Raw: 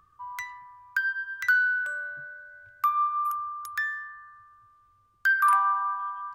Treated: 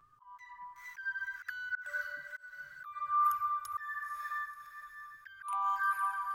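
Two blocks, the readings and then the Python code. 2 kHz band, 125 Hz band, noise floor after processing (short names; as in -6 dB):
-12.0 dB, n/a, -59 dBFS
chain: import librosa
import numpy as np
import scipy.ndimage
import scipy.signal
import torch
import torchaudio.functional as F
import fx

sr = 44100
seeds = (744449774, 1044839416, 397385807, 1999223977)

y = fx.echo_diffused(x, sr, ms=507, feedback_pct=49, wet_db=-9)
y = fx.env_flanger(y, sr, rest_ms=7.7, full_db=-21.0)
y = fx.auto_swell(y, sr, attack_ms=256.0)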